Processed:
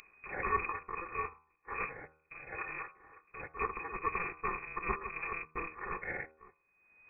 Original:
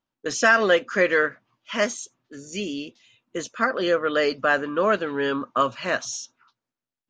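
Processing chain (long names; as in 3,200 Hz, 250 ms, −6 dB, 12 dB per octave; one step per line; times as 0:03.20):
samples in bit-reversed order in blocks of 256 samples
in parallel at +3 dB: upward compression, threshold −22 dBFS
on the sum: brickwall limiter −4.5 dBFS, peak gain reduction 5 dB
voice inversion scrambler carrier 2,500 Hz
hum removal 78.47 Hz, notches 19
level −8.5 dB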